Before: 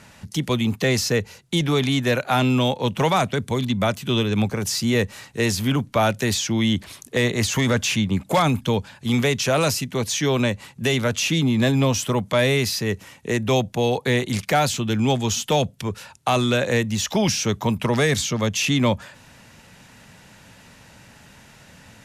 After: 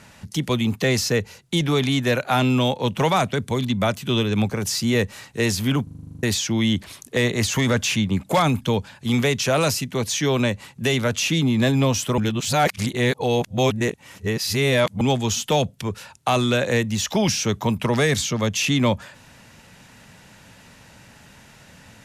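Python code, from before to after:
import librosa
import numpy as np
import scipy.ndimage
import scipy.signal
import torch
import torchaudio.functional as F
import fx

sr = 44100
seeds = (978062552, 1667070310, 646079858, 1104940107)

y = fx.edit(x, sr, fx.stutter_over(start_s=5.83, slice_s=0.04, count=10),
    fx.reverse_span(start_s=12.18, length_s=2.83), tone=tone)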